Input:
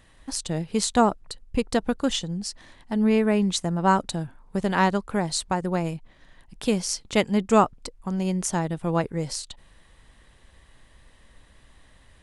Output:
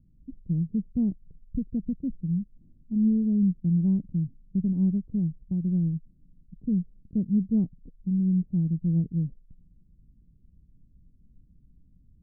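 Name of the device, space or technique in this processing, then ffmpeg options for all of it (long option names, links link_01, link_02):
the neighbour's flat through the wall: -af "lowpass=frequency=260:width=0.5412,lowpass=frequency=260:width=1.3066,equalizer=frequency=170:width_type=o:width=0.55:gain=7,volume=-2.5dB"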